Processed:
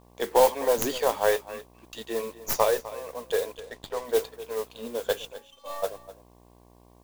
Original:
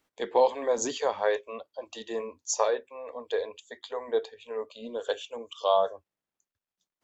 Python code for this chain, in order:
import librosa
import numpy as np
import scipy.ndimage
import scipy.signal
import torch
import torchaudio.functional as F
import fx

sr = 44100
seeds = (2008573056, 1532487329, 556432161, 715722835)

p1 = fx.tracing_dist(x, sr, depth_ms=0.18)
p2 = fx.ellip_bandstop(p1, sr, low_hz=360.0, high_hz=1200.0, order=3, stop_db=40, at=(1.44, 1.98))
p3 = np.sign(p2) * np.maximum(np.abs(p2) - 10.0 ** (-55.0 / 20.0), 0.0)
p4 = fx.dmg_buzz(p3, sr, base_hz=60.0, harmonics=19, level_db=-59.0, tilt_db=-3, odd_only=False)
p5 = fx.stiff_resonator(p4, sr, f0_hz=270.0, decay_s=0.25, stiffness=0.008, at=(5.32, 5.82), fade=0.02)
p6 = fx.mod_noise(p5, sr, seeds[0], snr_db=14)
p7 = p6 + fx.echo_single(p6, sr, ms=253, db=-16.5, dry=0)
p8 = fx.running_max(p7, sr, window=3, at=(3.58, 4.05))
y = p8 * librosa.db_to_amplitude(3.0)